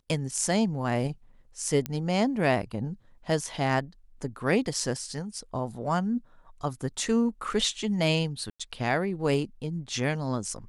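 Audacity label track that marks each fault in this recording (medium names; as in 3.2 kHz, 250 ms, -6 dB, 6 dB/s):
1.860000	1.860000	pop -14 dBFS
8.500000	8.600000	dropout 96 ms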